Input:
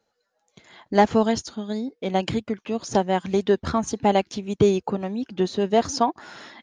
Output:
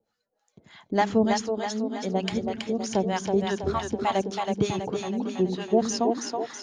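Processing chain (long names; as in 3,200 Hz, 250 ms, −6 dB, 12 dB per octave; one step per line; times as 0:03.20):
two-band tremolo in antiphase 3.3 Hz, depth 100%, crossover 720 Hz
echo with a time of its own for lows and highs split 310 Hz, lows 86 ms, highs 325 ms, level −4 dB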